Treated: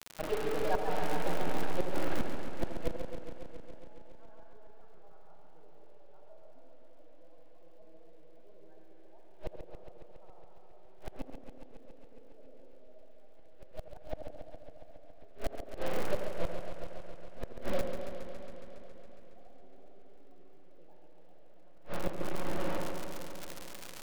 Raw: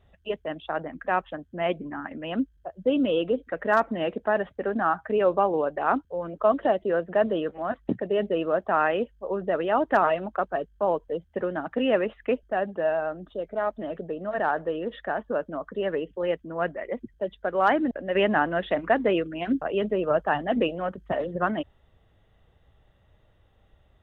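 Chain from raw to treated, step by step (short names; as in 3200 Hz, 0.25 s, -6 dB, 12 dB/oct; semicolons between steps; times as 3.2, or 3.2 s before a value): half-wave gain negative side -12 dB; in parallel at -1.5 dB: compressor 10:1, threshold -39 dBFS, peak gain reduction 21 dB; on the sum: thirty-one-band EQ 125 Hz -7 dB, 200 Hz -7 dB, 1250 Hz -6 dB, 2000 Hz -9 dB, 3150 Hz -6 dB; spectral gate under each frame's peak -15 dB strong; grains 0.136 s, grains 12/s, spray 0.741 s; spring tank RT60 3.1 s, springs 34/47 ms, chirp 45 ms, DRR 0.5 dB; bit-crush 6-bit; air absorption 280 m; crackle 100/s -29 dBFS; flipped gate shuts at -18 dBFS, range -34 dB; on a send: narrowing echo 84 ms, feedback 66%, band-pass 420 Hz, level -7 dB; on the sum: warbling echo 0.138 s, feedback 79%, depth 112 cents, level -8 dB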